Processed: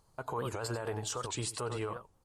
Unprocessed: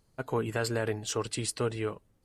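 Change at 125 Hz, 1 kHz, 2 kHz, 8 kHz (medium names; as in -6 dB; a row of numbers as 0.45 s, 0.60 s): -4.5 dB, -0.5 dB, -7.0 dB, -3.0 dB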